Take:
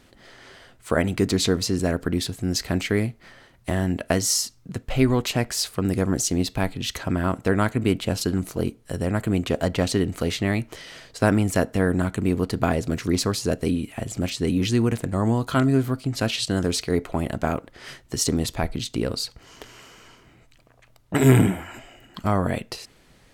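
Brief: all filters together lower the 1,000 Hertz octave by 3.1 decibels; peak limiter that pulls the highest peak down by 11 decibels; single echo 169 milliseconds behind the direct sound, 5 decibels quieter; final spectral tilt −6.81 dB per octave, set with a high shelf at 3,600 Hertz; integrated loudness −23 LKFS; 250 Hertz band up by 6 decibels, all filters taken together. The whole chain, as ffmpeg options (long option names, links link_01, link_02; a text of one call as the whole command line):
ffmpeg -i in.wav -af "equalizer=frequency=250:width_type=o:gain=7.5,equalizer=frequency=1000:width_type=o:gain=-4.5,highshelf=frequency=3600:gain=-6.5,alimiter=limit=-11dB:level=0:latency=1,aecho=1:1:169:0.562,volume=-1dB" out.wav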